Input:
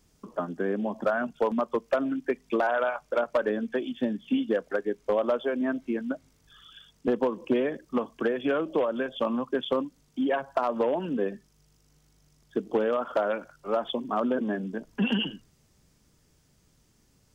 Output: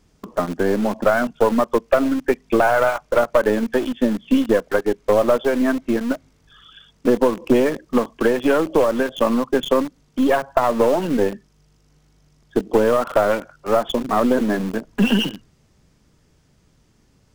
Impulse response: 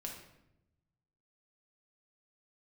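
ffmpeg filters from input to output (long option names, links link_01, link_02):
-filter_complex "[0:a]lowpass=frequency=3600:poles=1,asplit=2[link_01][link_02];[link_02]acrusher=bits=3:dc=4:mix=0:aa=0.000001,volume=-4.5dB[link_03];[link_01][link_03]amix=inputs=2:normalize=0,volume=7dB"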